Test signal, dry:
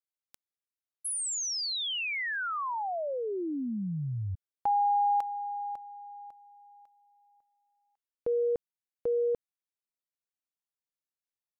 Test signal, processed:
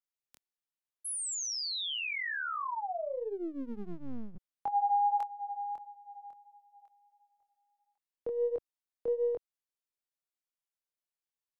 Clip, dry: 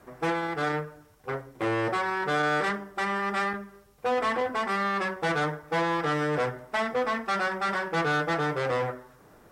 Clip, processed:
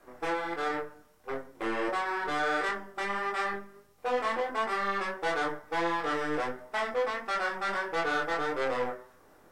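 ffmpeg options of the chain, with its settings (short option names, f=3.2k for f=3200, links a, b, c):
-filter_complex "[0:a]flanger=delay=22.5:depth=3.5:speed=1.5,acrossover=split=220[a][b];[a]aeval=exprs='abs(val(0))':c=same[c];[c][b]amix=inputs=2:normalize=0"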